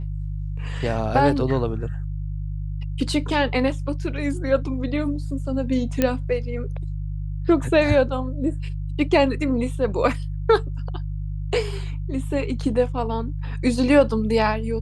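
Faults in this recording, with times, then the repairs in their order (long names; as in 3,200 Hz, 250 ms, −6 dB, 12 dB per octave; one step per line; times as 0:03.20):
mains hum 50 Hz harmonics 3 −28 dBFS
0:06.02: click −6 dBFS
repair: click removal
hum removal 50 Hz, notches 3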